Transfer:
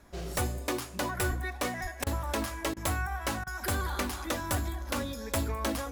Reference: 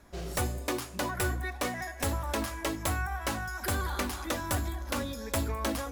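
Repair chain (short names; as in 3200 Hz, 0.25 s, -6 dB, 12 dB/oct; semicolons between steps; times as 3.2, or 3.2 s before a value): de-plosive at 1.28/1.82; interpolate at 2.04/2.74/3.44, 25 ms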